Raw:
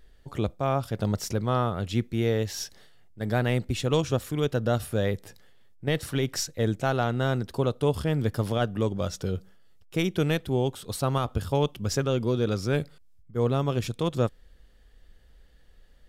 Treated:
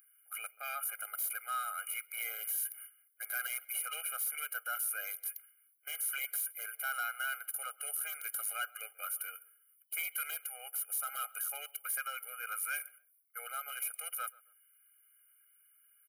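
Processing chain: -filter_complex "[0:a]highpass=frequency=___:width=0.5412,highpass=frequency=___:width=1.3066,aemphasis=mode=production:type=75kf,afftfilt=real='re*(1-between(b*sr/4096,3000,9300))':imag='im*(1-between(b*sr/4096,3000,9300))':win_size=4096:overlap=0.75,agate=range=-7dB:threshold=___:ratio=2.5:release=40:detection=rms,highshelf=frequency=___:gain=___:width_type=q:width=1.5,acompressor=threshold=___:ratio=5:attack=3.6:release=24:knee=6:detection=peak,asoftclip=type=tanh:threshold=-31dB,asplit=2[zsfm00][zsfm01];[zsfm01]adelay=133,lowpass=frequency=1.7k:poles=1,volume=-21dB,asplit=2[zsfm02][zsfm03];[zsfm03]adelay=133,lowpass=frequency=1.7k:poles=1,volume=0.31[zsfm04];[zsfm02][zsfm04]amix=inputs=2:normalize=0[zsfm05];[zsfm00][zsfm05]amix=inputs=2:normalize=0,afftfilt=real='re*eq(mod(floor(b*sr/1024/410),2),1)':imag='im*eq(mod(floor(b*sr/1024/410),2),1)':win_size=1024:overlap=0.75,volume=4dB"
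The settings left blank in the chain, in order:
1.3k, 1.3k, -57dB, 5.4k, 7.5, -32dB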